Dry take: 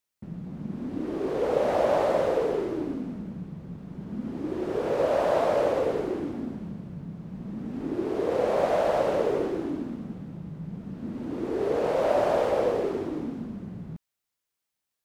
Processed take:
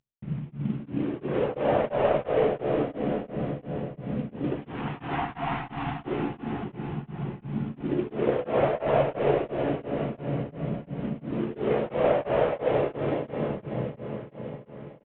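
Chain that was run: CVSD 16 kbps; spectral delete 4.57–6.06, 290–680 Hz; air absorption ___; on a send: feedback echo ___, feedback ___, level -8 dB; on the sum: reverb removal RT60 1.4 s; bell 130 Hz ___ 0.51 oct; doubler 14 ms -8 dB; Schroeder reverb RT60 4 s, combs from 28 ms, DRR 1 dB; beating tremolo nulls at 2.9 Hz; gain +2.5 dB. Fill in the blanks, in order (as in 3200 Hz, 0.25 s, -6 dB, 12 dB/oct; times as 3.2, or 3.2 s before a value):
71 m, 0.595 s, 53%, +11.5 dB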